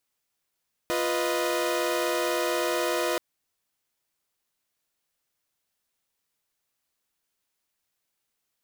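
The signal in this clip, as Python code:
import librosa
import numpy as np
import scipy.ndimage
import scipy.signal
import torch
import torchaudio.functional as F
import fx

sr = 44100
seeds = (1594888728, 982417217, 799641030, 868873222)

y = fx.chord(sr, length_s=2.28, notes=(65, 71, 75), wave='saw', level_db=-26.5)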